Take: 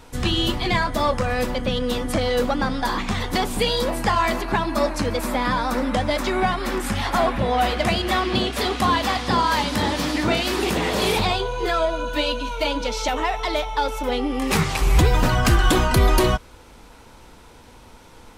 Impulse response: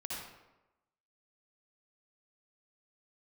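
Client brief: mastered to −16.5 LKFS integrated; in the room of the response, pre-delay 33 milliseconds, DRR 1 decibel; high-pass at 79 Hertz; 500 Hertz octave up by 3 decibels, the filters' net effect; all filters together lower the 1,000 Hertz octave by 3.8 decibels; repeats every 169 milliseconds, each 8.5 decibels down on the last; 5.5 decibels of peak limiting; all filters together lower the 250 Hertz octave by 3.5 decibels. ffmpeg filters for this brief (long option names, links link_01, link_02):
-filter_complex "[0:a]highpass=79,equalizer=frequency=250:width_type=o:gain=-7,equalizer=frequency=500:width_type=o:gain=7.5,equalizer=frequency=1000:width_type=o:gain=-7.5,alimiter=limit=-12.5dB:level=0:latency=1,aecho=1:1:169|338|507|676:0.376|0.143|0.0543|0.0206,asplit=2[link_01][link_02];[1:a]atrim=start_sample=2205,adelay=33[link_03];[link_02][link_03]afir=irnorm=-1:irlink=0,volume=-2dB[link_04];[link_01][link_04]amix=inputs=2:normalize=0,volume=4dB"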